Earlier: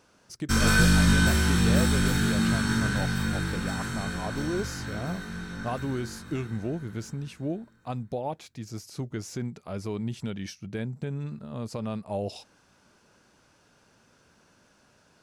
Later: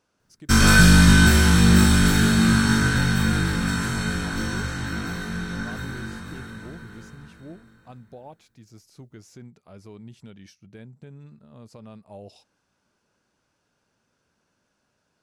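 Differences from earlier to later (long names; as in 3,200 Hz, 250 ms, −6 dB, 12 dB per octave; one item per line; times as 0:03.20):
speech −11.0 dB
background +7.0 dB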